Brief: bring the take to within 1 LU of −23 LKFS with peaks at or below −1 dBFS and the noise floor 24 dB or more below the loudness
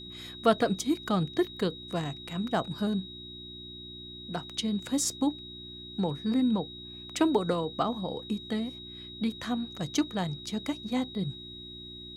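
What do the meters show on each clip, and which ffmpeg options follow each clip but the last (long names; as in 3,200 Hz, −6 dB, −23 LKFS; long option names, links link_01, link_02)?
mains hum 60 Hz; hum harmonics up to 360 Hz; level of the hum −48 dBFS; interfering tone 3,800 Hz; level of the tone −43 dBFS; integrated loudness −31.0 LKFS; sample peak −9.5 dBFS; target loudness −23.0 LKFS
→ -af "bandreject=frequency=60:width_type=h:width=4,bandreject=frequency=120:width_type=h:width=4,bandreject=frequency=180:width_type=h:width=4,bandreject=frequency=240:width_type=h:width=4,bandreject=frequency=300:width_type=h:width=4,bandreject=frequency=360:width_type=h:width=4"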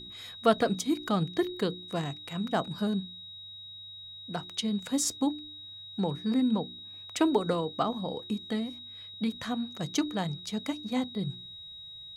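mains hum none found; interfering tone 3,800 Hz; level of the tone −43 dBFS
→ -af "bandreject=frequency=3800:width=30"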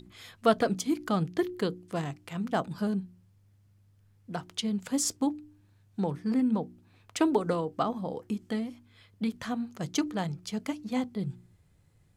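interfering tone none found; integrated loudness −31.5 LKFS; sample peak −10.0 dBFS; target loudness −23.0 LKFS
→ -af "volume=8.5dB"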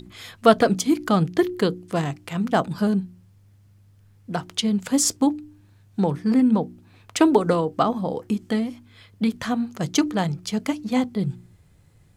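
integrated loudness −23.0 LKFS; sample peak −1.5 dBFS; background noise floor −55 dBFS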